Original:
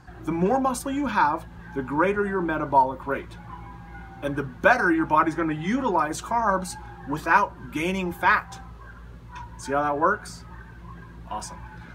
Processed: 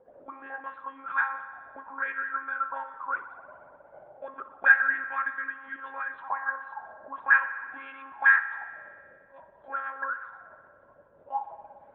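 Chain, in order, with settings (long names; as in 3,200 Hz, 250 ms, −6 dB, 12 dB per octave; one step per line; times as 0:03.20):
one-pitch LPC vocoder at 8 kHz 270 Hz
envelope filter 490–1,700 Hz, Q 13, up, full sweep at −20 dBFS
spring reverb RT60 1.8 s, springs 58 ms, chirp 60 ms, DRR 10.5 dB
level +9 dB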